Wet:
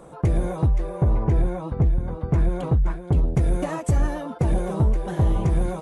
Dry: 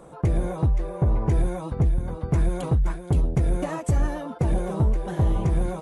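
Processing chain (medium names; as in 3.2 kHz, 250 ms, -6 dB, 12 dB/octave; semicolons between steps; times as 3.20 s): 1.24–3.28 s: low-pass 2.4 kHz 6 dB/octave; trim +1.5 dB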